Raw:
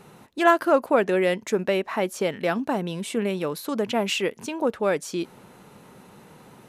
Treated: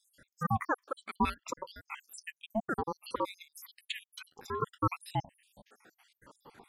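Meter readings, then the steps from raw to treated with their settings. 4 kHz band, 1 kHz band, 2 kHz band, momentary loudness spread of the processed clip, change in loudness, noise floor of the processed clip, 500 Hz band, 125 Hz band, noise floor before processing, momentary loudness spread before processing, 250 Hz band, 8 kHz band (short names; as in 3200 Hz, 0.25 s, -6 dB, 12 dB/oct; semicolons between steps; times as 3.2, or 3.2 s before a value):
-13.0 dB, -8.0 dB, -13.0 dB, 14 LU, -12.5 dB, under -85 dBFS, -18.5 dB, -4.5 dB, -51 dBFS, 9 LU, -13.0 dB, -13.0 dB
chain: random spectral dropouts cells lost 84%; ring modulator with a swept carrier 560 Hz, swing 35%, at 0.64 Hz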